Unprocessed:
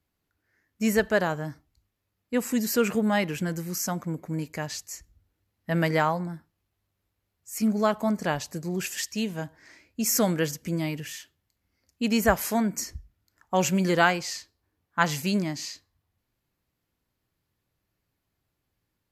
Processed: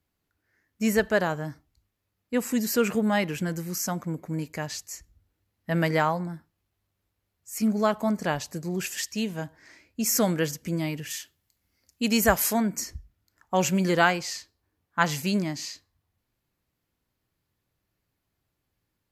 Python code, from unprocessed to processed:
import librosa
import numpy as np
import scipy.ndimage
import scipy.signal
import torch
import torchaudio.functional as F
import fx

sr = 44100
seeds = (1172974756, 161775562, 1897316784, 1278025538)

y = fx.high_shelf(x, sr, hz=3700.0, db=7.5, at=(11.1, 12.53))